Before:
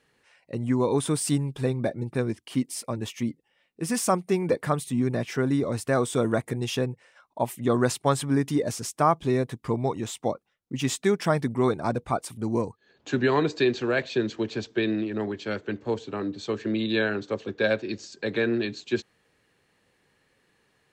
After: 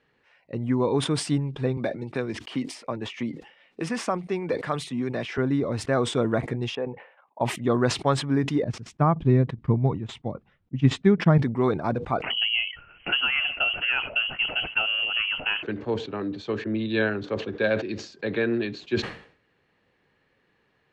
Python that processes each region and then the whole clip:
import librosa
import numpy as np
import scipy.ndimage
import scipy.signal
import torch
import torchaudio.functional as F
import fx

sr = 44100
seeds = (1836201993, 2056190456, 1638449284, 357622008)

y = fx.chain(x, sr, fx.low_shelf(hz=230.0, db=-10.0),
    fx.band_squash(depth_pct=70), at=(1.77, 5.38))
y = fx.chain(y, sr, fx.level_steps(step_db=9),
    fx.cabinet(low_hz=280.0, low_slope=12, high_hz=2700.0, hz=(320.0, 490.0, 820.0, 1400.0, 2100.0), db=(-6, 4, 7, -4, -3)), at=(6.75, 7.41))
y = fx.chain(y, sr, fx.bass_treble(bass_db=14, treble_db=-8),
    fx.upward_expand(threshold_db=-33.0, expansion=2.5), at=(8.64, 11.38))
y = fx.chain(y, sr, fx.freq_invert(carrier_hz=3100),
    fx.band_squash(depth_pct=100), at=(12.22, 15.63))
y = fx.chain(y, sr, fx.low_shelf(hz=100.0, db=8.5),
    fx.band_widen(depth_pct=70), at=(16.64, 17.24))
y = scipy.signal.sosfilt(scipy.signal.butter(2, 3300.0, 'lowpass', fs=sr, output='sos'), y)
y = fx.sustainer(y, sr, db_per_s=110.0)